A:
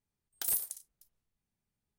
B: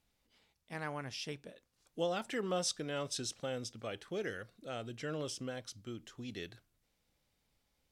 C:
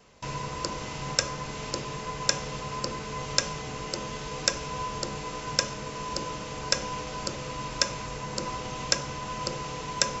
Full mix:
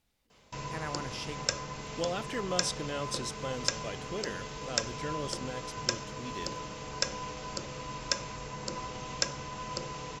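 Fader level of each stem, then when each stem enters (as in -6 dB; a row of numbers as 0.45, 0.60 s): off, +1.5 dB, -5.0 dB; off, 0.00 s, 0.30 s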